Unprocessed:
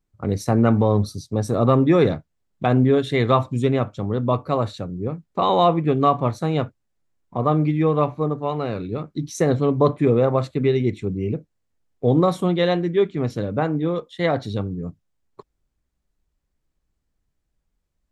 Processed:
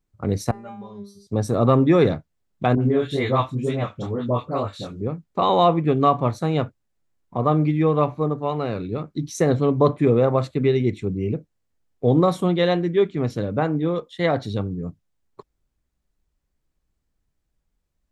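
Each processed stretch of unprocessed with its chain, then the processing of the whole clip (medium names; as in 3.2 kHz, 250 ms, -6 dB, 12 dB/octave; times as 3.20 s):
0.51–1.27 s: peaking EQ 220 Hz -4.5 dB 2.2 oct + feedback comb 200 Hz, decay 0.4 s, mix 100%
2.75–5.01 s: chorus 2.1 Hz, delay 20 ms, depth 6.1 ms + phase dispersion highs, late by 67 ms, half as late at 1.3 kHz + tape noise reduction on one side only encoder only
whole clip: none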